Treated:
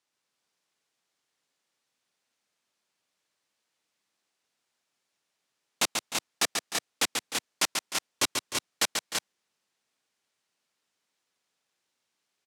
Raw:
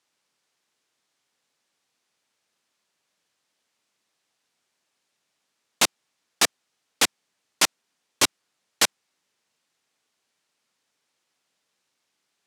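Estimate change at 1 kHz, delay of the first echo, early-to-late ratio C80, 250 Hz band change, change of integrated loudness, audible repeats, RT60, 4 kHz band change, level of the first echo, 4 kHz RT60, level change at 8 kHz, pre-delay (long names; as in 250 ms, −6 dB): −4.0 dB, 138 ms, no reverb audible, −4.0 dB, −6.0 dB, 2, no reverb audible, −4.0 dB, −5.0 dB, no reverb audible, −4.0 dB, no reverb audible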